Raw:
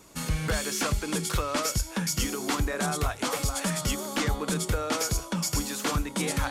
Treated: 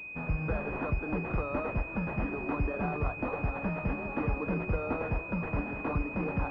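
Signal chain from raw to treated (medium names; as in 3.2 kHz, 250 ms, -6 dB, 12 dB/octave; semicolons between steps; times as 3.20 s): two-band feedback delay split 470 Hz, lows 194 ms, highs 561 ms, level -12 dB; class-D stage that switches slowly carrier 2.5 kHz; trim -3 dB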